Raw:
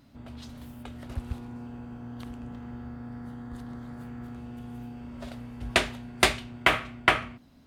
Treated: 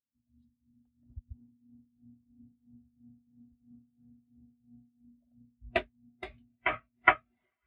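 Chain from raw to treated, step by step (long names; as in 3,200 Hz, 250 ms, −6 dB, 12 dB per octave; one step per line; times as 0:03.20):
feedback delay with all-pass diffusion 967 ms, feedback 47%, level −15 dB
shaped tremolo triangle 3 Hz, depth 65%
every bin expanded away from the loudest bin 2.5 to 1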